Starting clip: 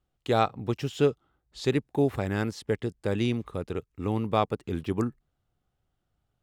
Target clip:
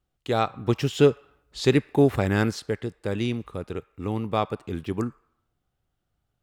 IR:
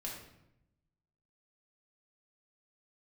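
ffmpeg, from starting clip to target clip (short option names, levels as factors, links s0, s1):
-filter_complex "[0:a]asettb=1/sr,asplit=3[s0][s1][s2];[s0]atrim=end=0.674[s3];[s1]atrim=start=0.67:end=2.6,asetpts=PTS-STARTPTS,afade=t=in:d=0.004:c=qsin,afade=t=out:st=1.926:d=0.004:c=qsin,acontrast=53[s4];[s2]atrim=start=2.596[s5];[s3][s4]acrossfade=d=0.004:c1=hsin:c2=qsin[s6];[s6][s5]acrossfade=d=0.004:c1=qsin:c2=hsin,asplit=2[s7][s8];[s8]highpass=f=1100:t=q:w=1.6[s9];[1:a]atrim=start_sample=2205[s10];[s9][s10]afir=irnorm=-1:irlink=0,volume=0.15[s11];[s7][s11]amix=inputs=2:normalize=0"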